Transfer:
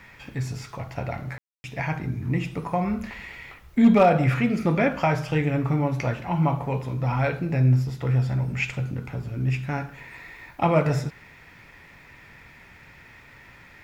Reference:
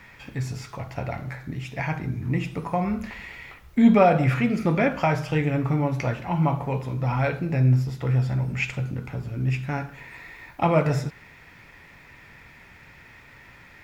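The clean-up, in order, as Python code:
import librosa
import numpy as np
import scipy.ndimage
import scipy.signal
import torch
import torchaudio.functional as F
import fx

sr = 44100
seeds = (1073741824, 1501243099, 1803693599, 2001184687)

y = fx.fix_declip(x, sr, threshold_db=-9.0)
y = fx.fix_ambience(y, sr, seeds[0], print_start_s=11.24, print_end_s=11.74, start_s=1.38, end_s=1.64)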